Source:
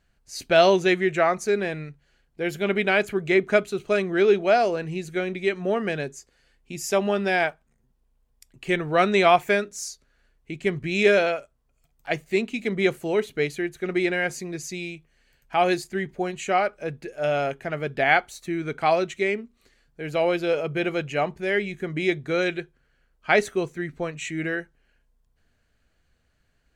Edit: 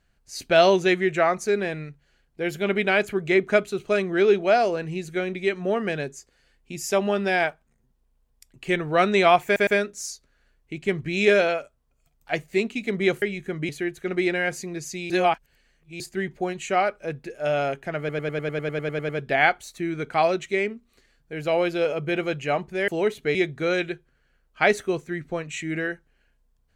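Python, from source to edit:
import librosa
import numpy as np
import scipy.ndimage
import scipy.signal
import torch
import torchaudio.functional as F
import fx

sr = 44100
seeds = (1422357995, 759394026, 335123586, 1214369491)

y = fx.edit(x, sr, fx.stutter(start_s=9.45, slice_s=0.11, count=3),
    fx.swap(start_s=13.0, length_s=0.47, other_s=21.56, other_length_s=0.47),
    fx.reverse_span(start_s=14.88, length_s=0.9),
    fx.stutter(start_s=17.77, slice_s=0.1, count=12), tone=tone)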